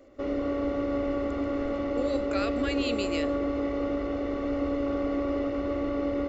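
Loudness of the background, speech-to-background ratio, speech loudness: -29.5 LUFS, -4.5 dB, -34.0 LUFS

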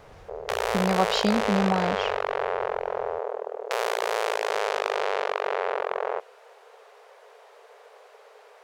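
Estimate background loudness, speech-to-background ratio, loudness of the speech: -28.0 LUFS, 1.5 dB, -26.5 LUFS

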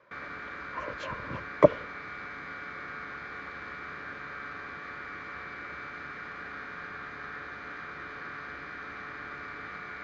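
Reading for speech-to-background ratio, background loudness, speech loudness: 11.5 dB, -40.0 LUFS, -28.5 LUFS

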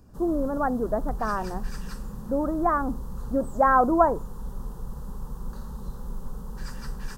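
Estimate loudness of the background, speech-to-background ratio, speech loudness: -39.0 LUFS, 14.0 dB, -25.0 LUFS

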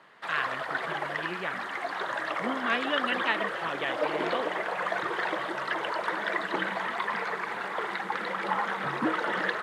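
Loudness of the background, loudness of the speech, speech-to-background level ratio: -31.0 LUFS, -33.5 LUFS, -2.5 dB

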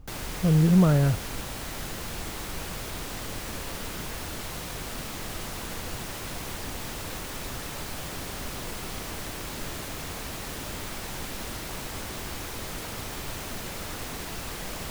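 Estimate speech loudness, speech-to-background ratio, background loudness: -22.0 LUFS, 13.0 dB, -35.0 LUFS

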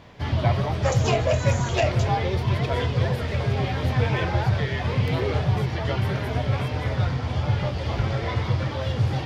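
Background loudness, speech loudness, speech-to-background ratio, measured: -24.5 LUFS, -27.0 LUFS, -2.5 dB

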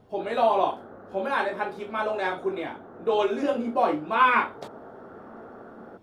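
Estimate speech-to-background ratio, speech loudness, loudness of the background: 19.0 dB, -26.0 LUFS, -45.0 LUFS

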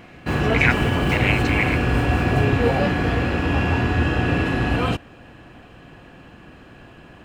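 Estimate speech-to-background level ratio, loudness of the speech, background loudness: -3.0 dB, -23.5 LUFS, -20.5 LUFS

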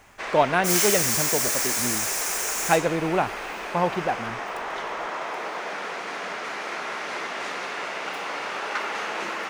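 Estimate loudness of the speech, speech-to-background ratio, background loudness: -26.0 LUFS, 0.5 dB, -26.5 LUFS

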